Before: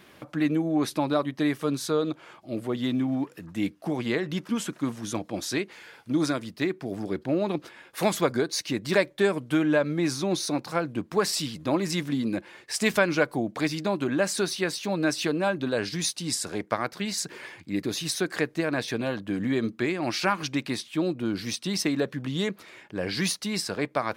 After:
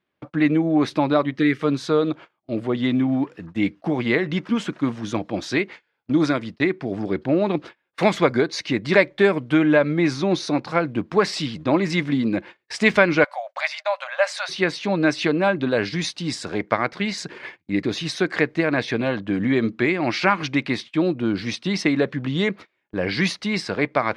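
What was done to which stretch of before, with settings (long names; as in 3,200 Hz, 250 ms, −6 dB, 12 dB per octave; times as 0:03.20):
0:01.36–0:01.61: gain on a spectral selection 520–1,200 Hz −13 dB
0:13.24–0:14.49: linear-phase brick-wall high-pass 520 Hz
whole clip: low-pass filter 3,800 Hz 12 dB per octave; noise gate −42 dBFS, range −31 dB; dynamic equaliser 2,100 Hz, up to +6 dB, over −50 dBFS, Q 5.6; level +6 dB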